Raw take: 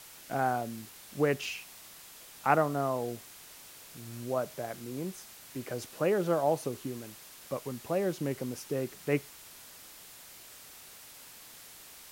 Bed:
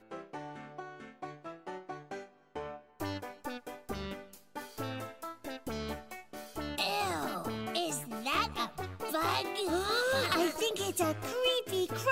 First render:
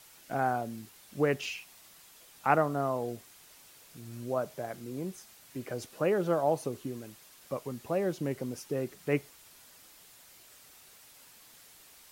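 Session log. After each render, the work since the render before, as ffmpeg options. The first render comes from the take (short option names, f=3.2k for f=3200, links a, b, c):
-af "afftdn=nr=6:nf=-51"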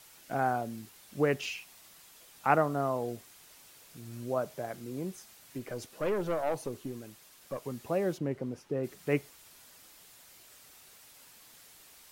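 -filter_complex "[0:a]asettb=1/sr,asplit=3[a][b][c];[a]atrim=end=5.584[d];[b]atrim=start=5.58:end=7.63,asetpts=PTS-STARTPTS,afade=t=in:d=0.004:c=qsin,afade=t=out:st=2.046:d=0.004:c=qsin,aeval=exprs='(tanh(15.8*val(0)+0.4)-tanh(0.4))/15.8':c=same[e];[c]atrim=start=7.626[f];[d][e]acrossfade=d=0.004:c1=hsin:c2=qsin[g];[g][f]acrossfade=d=0.004:c1=qsin:c2=hsin,asplit=3[h][i][j];[h]afade=t=out:st=8.17:d=0.02[k];[i]lowpass=f=1.6k:p=1,afade=t=in:st=8.17:d=0.02,afade=t=out:st=8.83:d=0.02[l];[j]afade=t=in:st=8.83:d=0.02[m];[k][l][m]amix=inputs=3:normalize=0"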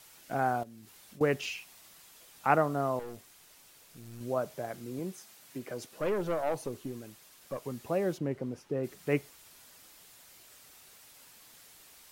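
-filter_complex "[0:a]asettb=1/sr,asplit=3[a][b][c];[a]atrim=end=0.634[d];[b]atrim=start=0.63:end=1.21,asetpts=PTS-STARTPTS,afade=t=in:d=0.004:c=qsin,afade=t=out:st=0.576:d=0.004:c=qsin,acompressor=threshold=-49dB:ratio=4:attack=3.2:release=140:knee=1:detection=peak[e];[c]atrim=start=1.206[f];[d][e]acrossfade=d=0.004:c1=hsin:c2=qsin[g];[g][f]acrossfade=d=0.004:c1=qsin:c2=hsin,asettb=1/sr,asplit=3[h][i][j];[h]atrim=end=2.994[k];[i]atrim=start=2.99:end=4.21,asetpts=PTS-STARTPTS,afade=t=in:d=0.004:c=qsin,afade=t=out:st=1.216:d=0.004:c=qsin,aeval=exprs='(tanh(79.4*val(0)+0.5)-tanh(0.5))/79.4':c=same[l];[j]atrim=start=4.206[m];[k][l]acrossfade=d=0.004:c1=hsin:c2=qsin[n];[n][m]acrossfade=d=0.004:c1=qsin:c2=hsin,asettb=1/sr,asplit=3[o][p][q];[o]atrim=end=4.994[r];[p]atrim=start=4.99:end=5.92,asetpts=PTS-STARTPTS,afade=t=in:d=0.004:c=qsin,afade=t=out:st=0.926:d=0.004:c=qsin,highpass=130[s];[q]atrim=start=5.916[t];[r][s]acrossfade=d=0.004:c1=hsin:c2=qsin[u];[u][t]acrossfade=d=0.004:c1=qsin:c2=hsin"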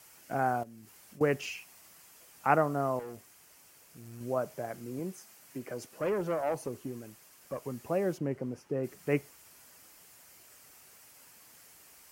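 -af "highpass=44,equalizer=f=3.7k:w=3.2:g=-9"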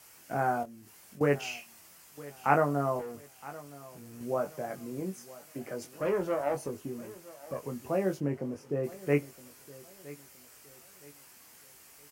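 -filter_complex "[0:a]asplit=2[a][b];[b]adelay=21,volume=-5.5dB[c];[a][c]amix=inputs=2:normalize=0,aecho=1:1:967|1934|2901:0.112|0.0381|0.013"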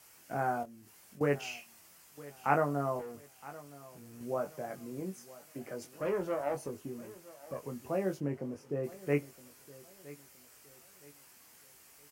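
-af "volume=-3.5dB"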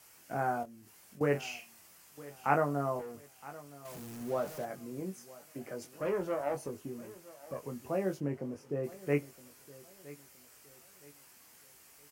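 -filter_complex "[0:a]asettb=1/sr,asplit=3[a][b][c];[a]atrim=end=1.274[d];[b]atrim=start=1.27:end=2.41,asetpts=PTS-STARTPTS,afade=t=in:d=0.004:c=qsin,afade=t=out:st=1.136:d=0.004:c=qsin,asplit=2[e][f];[f]adelay=44,volume=-11.5dB[g];[e][g]amix=inputs=2:normalize=0,atrim=end_sample=50274[h];[c]atrim=start=2.406[i];[d][h]acrossfade=d=0.004:c1=hsin:c2=qsin[j];[j][i]acrossfade=d=0.004:c1=qsin:c2=hsin,asettb=1/sr,asplit=3[k][l][m];[k]atrim=end=3.854[n];[l]atrim=start=3.85:end=4.65,asetpts=PTS-STARTPTS,afade=t=in:d=0.004:c=qsin,afade=t=out:st=0.796:d=0.004:c=qsin,aeval=exprs='val(0)+0.5*0.00631*sgn(val(0))':c=same[o];[m]atrim=start=4.646[p];[n][o]acrossfade=d=0.004:c1=hsin:c2=qsin[q];[q][p]acrossfade=d=0.004:c1=qsin:c2=hsin"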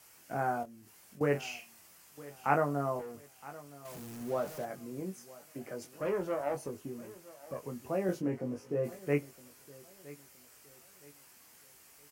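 -filter_complex "[0:a]asettb=1/sr,asplit=3[a][b][c];[a]atrim=end=8.074[d];[b]atrim=start=8.07:end=8.99,asetpts=PTS-STARTPTS,afade=t=in:d=0.004:c=qsin,afade=t=out:st=0.916:d=0.004:c=qsin,asplit=2[e][f];[f]adelay=17,volume=-2dB[g];[e][g]amix=inputs=2:normalize=0,atrim=end_sample=40572[h];[c]atrim=start=8.986[i];[d][h]acrossfade=d=0.004:c1=hsin:c2=qsin[j];[j][i]acrossfade=d=0.004:c1=qsin:c2=hsin"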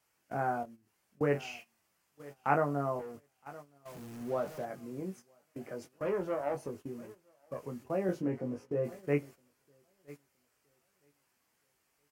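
-af "agate=range=-13dB:threshold=-47dB:ratio=16:detection=peak,highshelf=f=4.6k:g=-8.5"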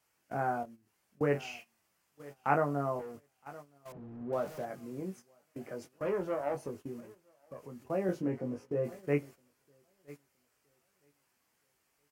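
-filter_complex "[0:a]asettb=1/sr,asplit=3[a][b][c];[a]atrim=end=3.924[d];[b]atrim=start=3.92:end=4.33,asetpts=PTS-STARTPTS,afade=t=in:d=0.004:c=qsin,afade=t=out:st=0.406:d=0.004:c=qsin,adynamicsmooth=sensitivity=1:basefreq=1k[e];[c]atrim=start=4.326[f];[d][e]acrossfade=d=0.004:c1=hsin:c2=qsin[g];[g][f]acrossfade=d=0.004:c1=qsin:c2=hsin,asettb=1/sr,asplit=3[h][i][j];[h]atrim=end=7.004[k];[i]atrim=start=7:end=7.82,asetpts=PTS-STARTPTS,afade=t=in:d=0.004:c=qsin,afade=t=out:st=0.816:d=0.004:c=qsin,acompressor=threshold=-52dB:ratio=1.5:attack=3.2:release=140:knee=1:detection=peak[l];[j]atrim=start=7.816[m];[k][l]acrossfade=d=0.004:c1=hsin:c2=qsin[n];[n][m]acrossfade=d=0.004:c1=qsin:c2=hsin"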